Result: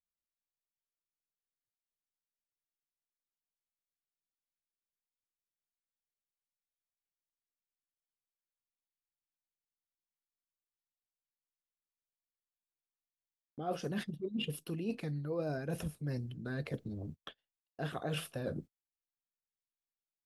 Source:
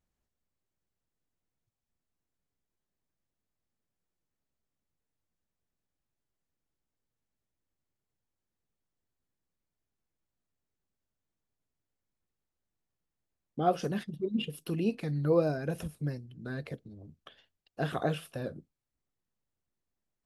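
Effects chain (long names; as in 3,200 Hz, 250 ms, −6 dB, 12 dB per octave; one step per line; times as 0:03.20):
noise gate −52 dBFS, range −31 dB
reversed playback
downward compressor 6 to 1, threshold −43 dBFS, peak gain reduction 20.5 dB
reversed playback
level +7.5 dB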